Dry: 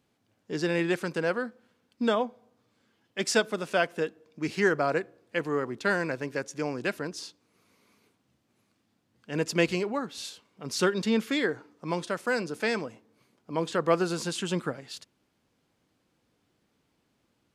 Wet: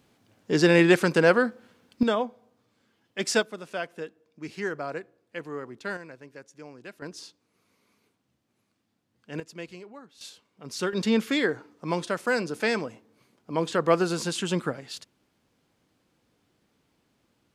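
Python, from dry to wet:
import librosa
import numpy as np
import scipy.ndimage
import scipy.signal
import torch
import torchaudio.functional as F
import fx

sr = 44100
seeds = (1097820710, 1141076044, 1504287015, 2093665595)

y = fx.gain(x, sr, db=fx.steps((0.0, 9.0), (2.03, 0.5), (3.43, -7.0), (5.97, -13.5), (7.02, -3.5), (9.4, -15.0), (10.21, -4.0), (10.93, 2.5)))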